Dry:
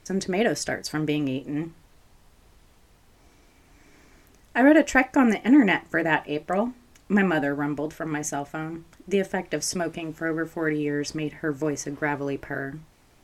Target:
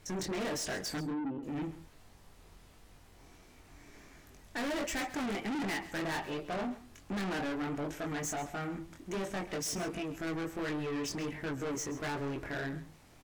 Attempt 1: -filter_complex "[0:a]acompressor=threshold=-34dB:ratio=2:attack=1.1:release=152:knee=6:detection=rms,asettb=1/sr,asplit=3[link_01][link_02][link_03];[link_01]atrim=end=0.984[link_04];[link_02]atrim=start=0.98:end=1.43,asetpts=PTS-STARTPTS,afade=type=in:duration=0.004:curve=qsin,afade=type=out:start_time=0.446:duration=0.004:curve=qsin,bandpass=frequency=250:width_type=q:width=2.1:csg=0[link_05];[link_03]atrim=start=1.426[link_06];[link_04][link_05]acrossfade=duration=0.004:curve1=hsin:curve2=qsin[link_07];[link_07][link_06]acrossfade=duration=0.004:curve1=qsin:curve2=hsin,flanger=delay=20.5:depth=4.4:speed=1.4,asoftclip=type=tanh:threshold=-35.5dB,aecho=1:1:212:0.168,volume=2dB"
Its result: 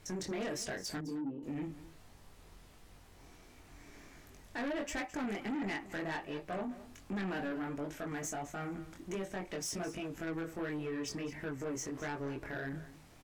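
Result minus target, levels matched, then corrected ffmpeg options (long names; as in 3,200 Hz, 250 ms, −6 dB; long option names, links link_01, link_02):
downward compressor: peak gain reduction +14 dB; echo 79 ms late
-filter_complex "[0:a]asettb=1/sr,asplit=3[link_01][link_02][link_03];[link_01]atrim=end=0.984[link_04];[link_02]atrim=start=0.98:end=1.43,asetpts=PTS-STARTPTS,afade=type=in:duration=0.004:curve=qsin,afade=type=out:start_time=0.446:duration=0.004:curve=qsin,bandpass=frequency=250:width_type=q:width=2.1:csg=0[link_05];[link_03]atrim=start=1.426[link_06];[link_04][link_05]acrossfade=duration=0.004:curve1=hsin:curve2=qsin[link_07];[link_07][link_06]acrossfade=duration=0.004:curve1=qsin:curve2=hsin,flanger=delay=20.5:depth=4.4:speed=1.4,asoftclip=type=tanh:threshold=-35.5dB,aecho=1:1:133:0.168,volume=2dB"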